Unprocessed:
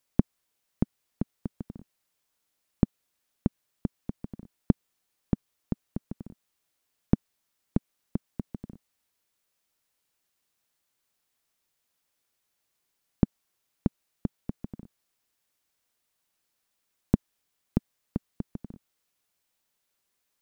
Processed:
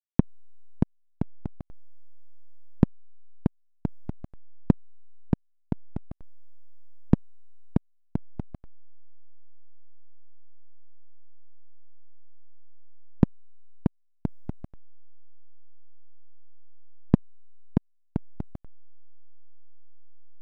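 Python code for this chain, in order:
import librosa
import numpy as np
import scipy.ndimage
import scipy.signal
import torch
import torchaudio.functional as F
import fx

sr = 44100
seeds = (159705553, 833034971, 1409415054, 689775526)

y = fx.backlash(x, sr, play_db=-21.5)
y = y * librosa.db_to_amplitude(3.5)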